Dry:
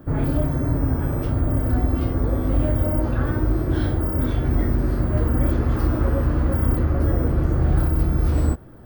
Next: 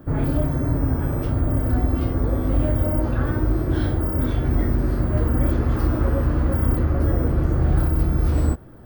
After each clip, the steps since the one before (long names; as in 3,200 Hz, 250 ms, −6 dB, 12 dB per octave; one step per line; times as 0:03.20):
no processing that can be heard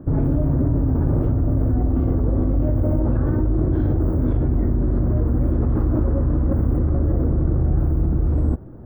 drawn EQ curve 300 Hz 0 dB, 1,000 Hz −7 dB, 5,100 Hz −27 dB
in parallel at −2 dB: compressor whose output falls as the input rises −23 dBFS, ratio −0.5
on the sum: level −1.5 dB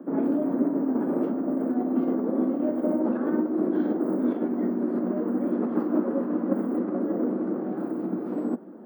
Butterworth high-pass 190 Hz 72 dB per octave